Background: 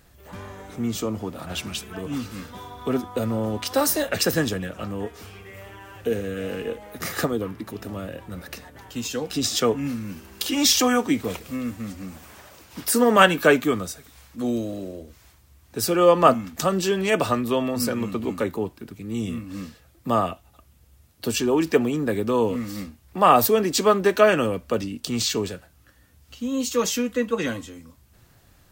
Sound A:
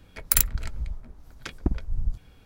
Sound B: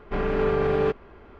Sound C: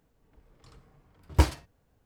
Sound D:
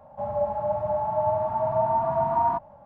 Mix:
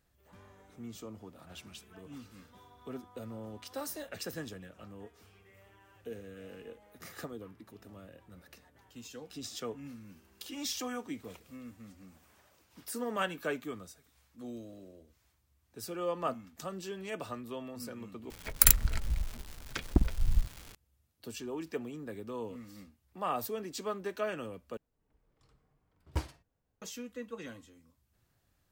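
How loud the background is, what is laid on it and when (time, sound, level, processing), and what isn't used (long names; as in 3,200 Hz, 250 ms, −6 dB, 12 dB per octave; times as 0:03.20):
background −18.5 dB
0:18.30: overwrite with A −0.5 dB + surface crackle 370 per second −35 dBFS
0:24.77: overwrite with C −13 dB
not used: B, D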